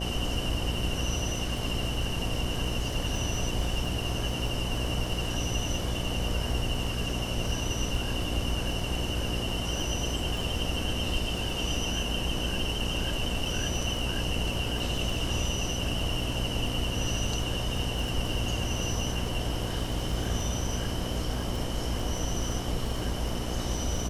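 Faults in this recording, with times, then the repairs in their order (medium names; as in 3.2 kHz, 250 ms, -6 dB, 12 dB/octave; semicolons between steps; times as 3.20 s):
buzz 60 Hz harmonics 12 -34 dBFS
crackle 22 per s -34 dBFS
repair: de-click; de-hum 60 Hz, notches 12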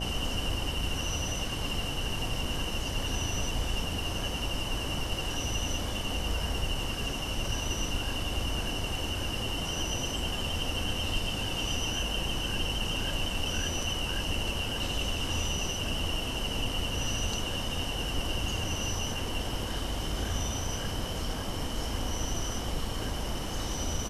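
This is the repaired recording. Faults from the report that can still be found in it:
nothing left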